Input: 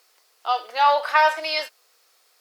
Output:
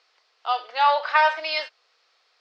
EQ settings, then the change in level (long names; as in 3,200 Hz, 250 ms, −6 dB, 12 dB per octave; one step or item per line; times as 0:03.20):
high-pass filter 560 Hz 6 dB per octave
low-pass filter 4,800 Hz 24 dB per octave
0.0 dB